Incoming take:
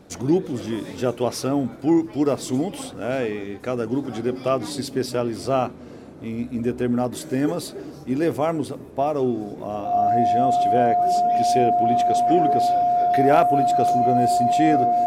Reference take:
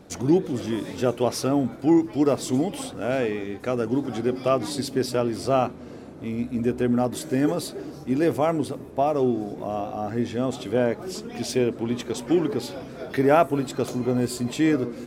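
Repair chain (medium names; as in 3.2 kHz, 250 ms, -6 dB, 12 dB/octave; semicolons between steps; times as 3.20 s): clip repair -7 dBFS; band-stop 710 Hz, Q 30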